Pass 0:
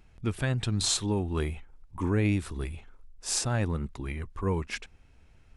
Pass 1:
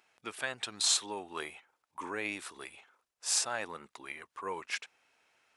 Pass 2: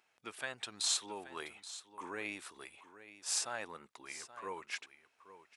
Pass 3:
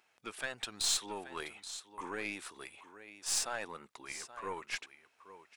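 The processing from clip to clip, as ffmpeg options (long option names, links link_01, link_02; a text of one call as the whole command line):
ffmpeg -i in.wav -af "highpass=700" out.wav
ffmpeg -i in.wav -af "aecho=1:1:828:0.188,volume=-5dB" out.wav
ffmpeg -i in.wav -af "aeval=exprs='0.1*(cos(1*acos(clip(val(0)/0.1,-1,1)))-cos(1*PI/2))+0.00794*(cos(5*acos(clip(val(0)/0.1,-1,1)))-cos(5*PI/2))+0.00562*(cos(8*acos(clip(val(0)/0.1,-1,1)))-cos(8*PI/2))':channel_layout=same" out.wav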